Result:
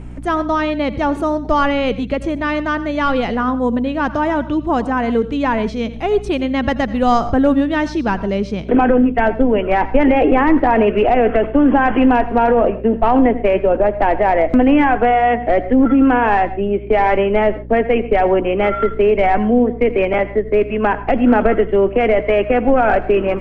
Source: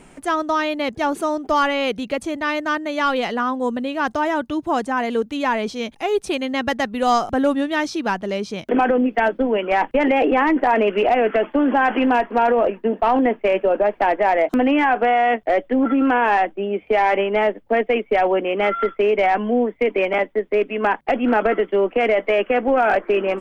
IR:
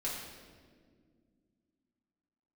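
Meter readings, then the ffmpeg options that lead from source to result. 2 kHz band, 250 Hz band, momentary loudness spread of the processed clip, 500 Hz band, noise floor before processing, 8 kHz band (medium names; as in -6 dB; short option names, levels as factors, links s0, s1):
+1.0 dB, +6.5 dB, 6 LU, +3.5 dB, -50 dBFS, no reading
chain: -filter_complex "[0:a]aemphasis=mode=reproduction:type=bsi,asplit=2[s0][s1];[1:a]atrim=start_sample=2205,atrim=end_sample=3528,adelay=81[s2];[s1][s2]afir=irnorm=-1:irlink=0,volume=0.158[s3];[s0][s3]amix=inputs=2:normalize=0,aeval=exprs='val(0)+0.0224*(sin(2*PI*60*n/s)+sin(2*PI*2*60*n/s)/2+sin(2*PI*3*60*n/s)/3+sin(2*PI*4*60*n/s)/4+sin(2*PI*5*60*n/s)/5)':c=same,volume=1.26"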